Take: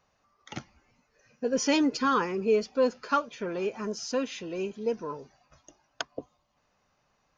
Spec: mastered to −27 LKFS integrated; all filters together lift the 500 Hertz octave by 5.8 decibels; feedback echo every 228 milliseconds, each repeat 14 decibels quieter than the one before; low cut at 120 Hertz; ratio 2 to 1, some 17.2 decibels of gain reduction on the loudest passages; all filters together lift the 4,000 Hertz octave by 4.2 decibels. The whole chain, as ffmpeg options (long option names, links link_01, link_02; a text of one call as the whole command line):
ffmpeg -i in.wav -af "highpass=120,equalizer=frequency=500:width_type=o:gain=6.5,equalizer=frequency=4000:width_type=o:gain=5.5,acompressor=threshold=-47dB:ratio=2,aecho=1:1:228|456:0.2|0.0399,volume=13dB" out.wav